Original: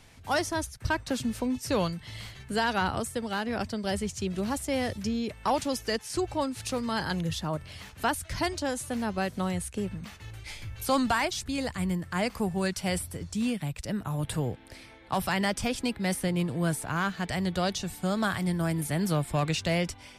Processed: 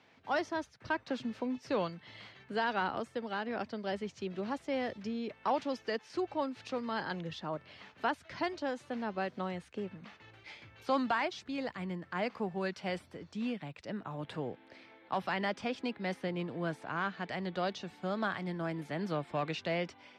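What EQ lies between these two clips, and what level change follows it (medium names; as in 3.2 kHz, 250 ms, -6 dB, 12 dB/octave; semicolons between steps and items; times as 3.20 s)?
high-pass 250 Hz 12 dB/octave; distance through air 220 m; -3.5 dB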